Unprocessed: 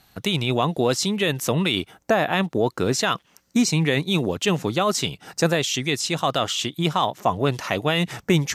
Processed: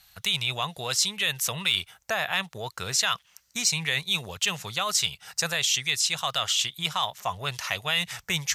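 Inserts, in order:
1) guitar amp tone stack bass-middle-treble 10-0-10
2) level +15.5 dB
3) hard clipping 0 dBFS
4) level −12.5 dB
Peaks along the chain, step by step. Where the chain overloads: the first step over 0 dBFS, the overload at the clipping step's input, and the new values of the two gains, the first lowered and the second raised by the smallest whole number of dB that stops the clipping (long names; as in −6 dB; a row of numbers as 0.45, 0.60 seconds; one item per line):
−11.0, +4.5, 0.0, −12.5 dBFS
step 2, 4.5 dB
step 2 +10.5 dB, step 4 −7.5 dB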